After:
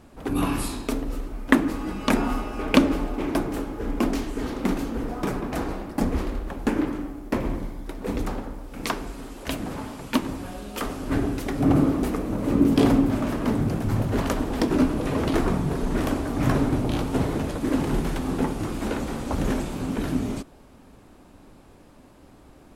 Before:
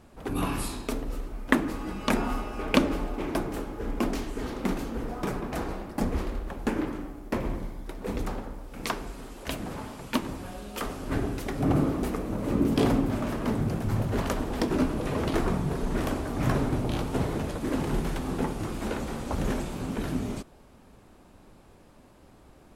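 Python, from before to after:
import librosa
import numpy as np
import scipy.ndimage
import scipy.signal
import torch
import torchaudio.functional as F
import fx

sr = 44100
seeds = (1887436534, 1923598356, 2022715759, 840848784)

y = fx.peak_eq(x, sr, hz=280.0, db=5.0, octaves=0.27)
y = y * librosa.db_to_amplitude(3.0)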